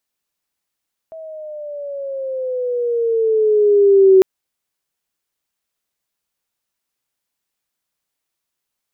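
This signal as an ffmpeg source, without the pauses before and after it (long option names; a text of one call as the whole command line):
ffmpeg -f lavfi -i "aevalsrc='pow(10,(-5+25.5*(t/3.1-1))/20)*sin(2*PI*650*3.1/(-9.5*log(2)/12)*(exp(-9.5*log(2)/12*t/3.1)-1))':duration=3.1:sample_rate=44100" out.wav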